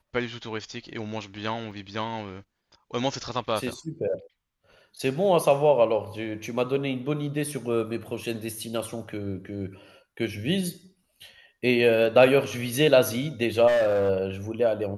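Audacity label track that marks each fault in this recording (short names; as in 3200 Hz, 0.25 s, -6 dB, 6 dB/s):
1.710000	1.710000	gap 3.7 ms
13.670000	14.100000	clipped -19 dBFS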